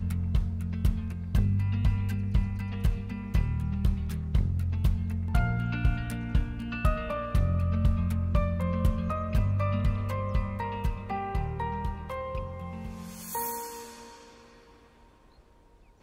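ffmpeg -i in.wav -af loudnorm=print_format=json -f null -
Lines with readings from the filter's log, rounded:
"input_i" : "-30.4",
"input_tp" : "-12.8",
"input_lra" : "11.2",
"input_thresh" : "-41.5",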